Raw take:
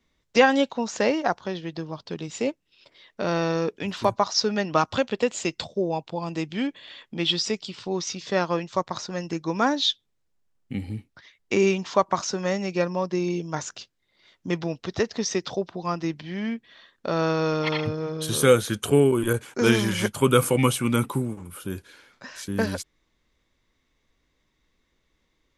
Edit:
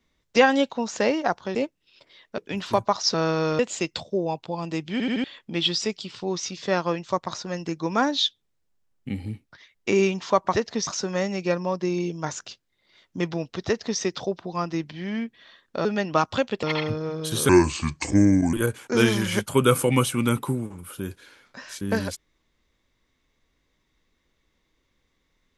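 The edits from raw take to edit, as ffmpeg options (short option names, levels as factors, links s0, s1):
-filter_complex "[0:a]asplit=15[s0][s1][s2][s3][s4][s5][s6][s7][s8][s9][s10][s11][s12][s13][s14];[s0]atrim=end=1.552[s15];[s1]atrim=start=2.398:end=3.232[s16];[s2]atrim=start=3.688:end=4.452[s17];[s3]atrim=start=17.148:end=17.602[s18];[s4]atrim=start=5.228:end=6.642[s19];[s5]atrim=start=6.558:end=6.642[s20];[s6]atrim=start=6.558:end=6.642[s21];[s7]atrim=start=6.558:end=6.642[s22];[s8]atrim=start=6.878:end=12.172[s23];[s9]atrim=start=14.958:end=15.302[s24];[s10]atrim=start=12.168:end=17.152[s25];[s11]atrim=start=4.448:end=5.232[s26];[s12]atrim=start=17.598:end=18.464[s27];[s13]atrim=start=18.46:end=19.2,asetpts=PTS-STARTPTS,asetrate=31311,aresample=44100,atrim=end_sample=45963,asetpts=PTS-STARTPTS[s28];[s14]atrim=start=19.196[s29];[s15][s16]acrossfade=d=0.004:c1=hsin:c2=hsin[s30];[s30][s17]acrossfade=d=0.004:c1=hsin:c2=hsin[s31];[s31][s18]acrossfade=d=0.004:c1=hsin:c2=hsin[s32];[s32][s19]acrossfade=d=0.004:c1=hsin:c2=hsin[s33];[s33][s20]acrossfade=d=0.004:c1=hsin:c2=hsin[s34];[s34][s21]acrossfade=d=0.004:c1=hsin:c2=hsin[s35];[s35][s22]acrossfade=d=0.004:c1=hsin:c2=hsin[s36];[s36][s23]acrossfade=d=0.004:c1=hsin:c2=hsin[s37];[s37][s24]acrossfade=d=0.004:c1=hsin:c2=hsin[s38];[s38][s25]acrossfade=d=0.004:c1=hsin:c2=hsin[s39];[s39][s26]acrossfade=d=0.004:c1=hsin:c2=hsin[s40];[s40][s27]acrossfade=d=0.004:c1=hsin:c2=hsin[s41];[s41][s28]acrossfade=d=0.004:c1=hsin:c2=hsin[s42];[s42][s29]acrossfade=d=0.004:c1=hsin:c2=hsin"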